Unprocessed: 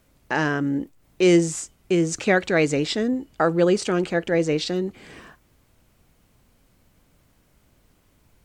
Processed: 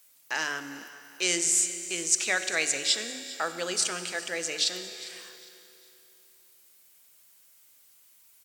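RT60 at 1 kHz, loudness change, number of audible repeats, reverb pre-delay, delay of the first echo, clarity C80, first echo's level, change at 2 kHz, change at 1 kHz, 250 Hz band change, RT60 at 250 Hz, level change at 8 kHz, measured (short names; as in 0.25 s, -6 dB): 2.8 s, -5.0 dB, 2, 23 ms, 0.403 s, 10.0 dB, -19.0 dB, -3.0 dB, -9.0 dB, -19.5 dB, 2.7 s, +8.0 dB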